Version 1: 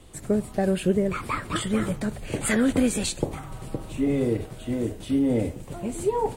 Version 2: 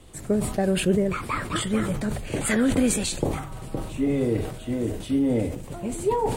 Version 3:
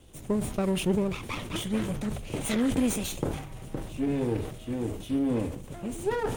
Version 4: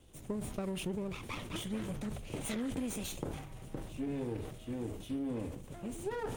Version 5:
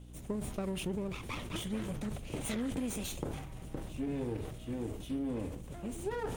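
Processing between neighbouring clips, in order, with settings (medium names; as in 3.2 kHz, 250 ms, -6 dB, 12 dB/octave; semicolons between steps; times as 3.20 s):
decay stretcher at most 66 dB/s
comb filter that takes the minimum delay 0.32 ms; trim -4.5 dB
compression, threshold -27 dBFS, peak gain reduction 7 dB; trim -6.5 dB
hum 60 Hz, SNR 12 dB; trim +1 dB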